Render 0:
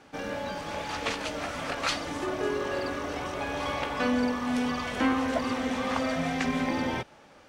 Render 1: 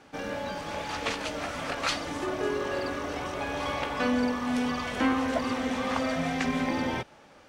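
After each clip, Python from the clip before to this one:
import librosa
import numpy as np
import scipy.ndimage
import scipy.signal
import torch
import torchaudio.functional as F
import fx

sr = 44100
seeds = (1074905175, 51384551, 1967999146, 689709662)

y = x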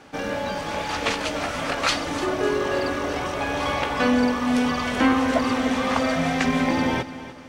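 y = fx.echo_feedback(x, sr, ms=297, feedback_pct=39, wet_db=-15.0)
y = F.gain(torch.from_numpy(y), 6.5).numpy()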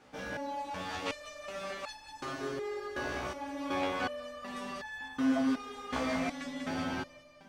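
y = fx.echo_feedback(x, sr, ms=194, feedback_pct=41, wet_db=-6)
y = fx.resonator_held(y, sr, hz=2.7, low_hz=64.0, high_hz=860.0)
y = F.gain(torch.from_numpy(y), -3.0).numpy()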